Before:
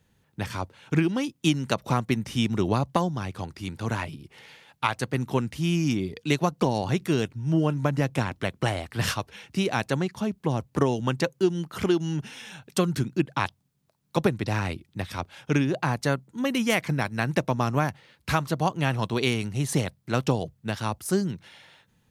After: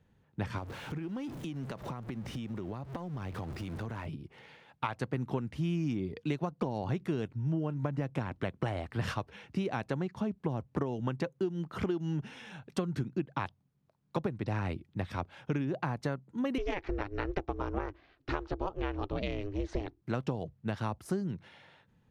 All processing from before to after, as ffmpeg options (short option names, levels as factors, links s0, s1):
-filter_complex "[0:a]asettb=1/sr,asplit=3[s0][s1][s2];[s0]atrim=end=0.584[s3];[s1]atrim=start=0.58:end=4.06,asetpts=PTS-STARTPTS,afade=t=in:d=0.004:c=qsin,afade=t=out:st=3.476:d=0.004:c=qsin,aeval=exprs='val(0)+0.5*0.0188*sgn(val(0))':c=same,highshelf=f=8900:g=4,acompressor=threshold=0.0224:ratio=12:attack=3.2:release=140:knee=1:detection=peak[s4];[s2]atrim=start=4.056[s5];[s3][s4]acrossfade=d=0.004:c1=hsin:c2=qsin[s6];[s6][s5]acrossfade=d=0.004:c1=qsin:c2=hsin,asettb=1/sr,asplit=3[s7][s8][s9];[s7]atrim=end=16.584[s10];[s8]atrim=start=16.58:end=20.02,asetpts=PTS-STARTPTS,afade=t=in:d=0.004:c=qsin,afade=t=out:st=3.436:d=0.004:c=qsin,lowpass=f=5700:w=0.5412,lowpass=f=5700:w=1.3066,aeval=exprs='val(0)*sin(2*PI*200*n/s)':c=same[s11];[s9]atrim=start=20.016[s12];[s10][s11]acrossfade=d=0.004:c1=hsin:c2=qsin[s13];[s13][s12]acrossfade=d=0.004:c1=qsin:c2=hsin,lowpass=f=1400:p=1,acompressor=threshold=0.0398:ratio=6,volume=0.891"